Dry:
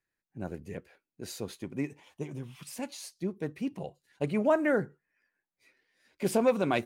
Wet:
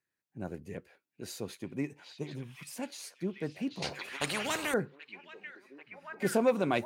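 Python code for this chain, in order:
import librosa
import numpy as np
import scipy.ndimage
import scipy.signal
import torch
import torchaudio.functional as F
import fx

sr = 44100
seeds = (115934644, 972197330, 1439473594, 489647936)

p1 = scipy.signal.sosfilt(scipy.signal.butter(2, 75.0, 'highpass', fs=sr, output='sos'), x)
p2 = p1 + fx.echo_stepped(p1, sr, ms=786, hz=3100.0, octaves=-0.7, feedback_pct=70, wet_db=-2.0, dry=0)
p3 = fx.spectral_comp(p2, sr, ratio=4.0, at=(3.82, 4.74))
y = p3 * 10.0 ** (-1.5 / 20.0)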